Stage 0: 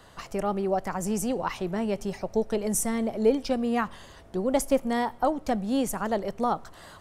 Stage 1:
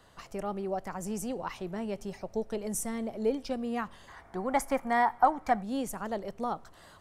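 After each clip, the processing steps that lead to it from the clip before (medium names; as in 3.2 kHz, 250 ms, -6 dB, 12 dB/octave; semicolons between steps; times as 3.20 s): time-frequency box 4.08–5.62 s, 670–2400 Hz +11 dB; trim -7 dB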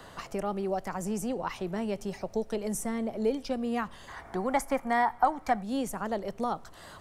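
three bands compressed up and down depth 40%; trim +1.5 dB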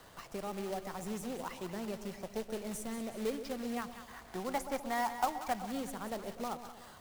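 companded quantiser 4-bit; two-band feedback delay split 910 Hz, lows 126 ms, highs 185 ms, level -10 dB; trim -8.5 dB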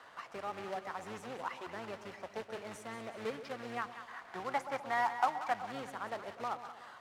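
octave divider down 1 oct, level -1 dB; band-pass filter 1.4 kHz, Q 0.93; trim +5 dB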